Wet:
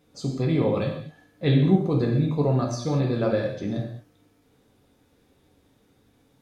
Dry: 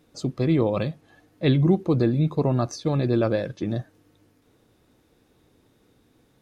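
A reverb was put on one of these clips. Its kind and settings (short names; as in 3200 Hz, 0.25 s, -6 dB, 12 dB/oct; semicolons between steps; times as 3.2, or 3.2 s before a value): non-linear reverb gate 0.25 s falling, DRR -1 dB; gain -4 dB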